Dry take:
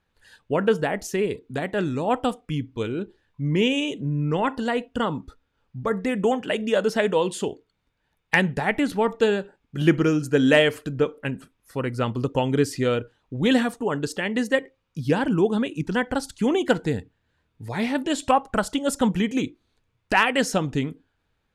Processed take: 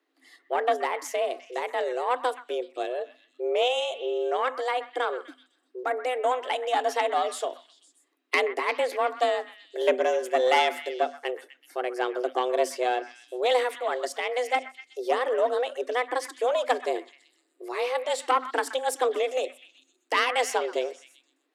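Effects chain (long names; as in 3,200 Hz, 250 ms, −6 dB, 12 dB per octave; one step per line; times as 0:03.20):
one-sided soft clipper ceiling −15.5 dBFS
frequency shifter +250 Hz
echo through a band-pass that steps 126 ms, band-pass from 1,500 Hz, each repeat 0.7 octaves, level −11 dB
level −2.5 dB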